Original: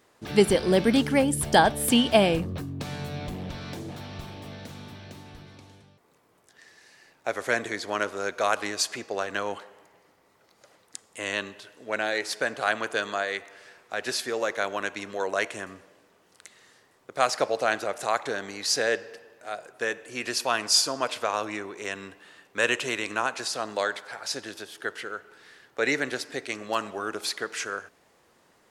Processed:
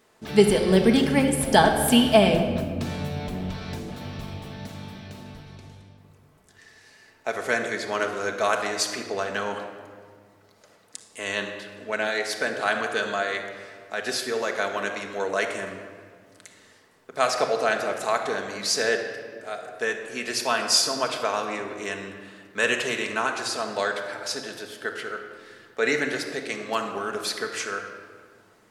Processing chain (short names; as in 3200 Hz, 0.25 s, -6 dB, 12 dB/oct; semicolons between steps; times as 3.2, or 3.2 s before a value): shoebox room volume 2800 m³, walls mixed, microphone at 1.5 m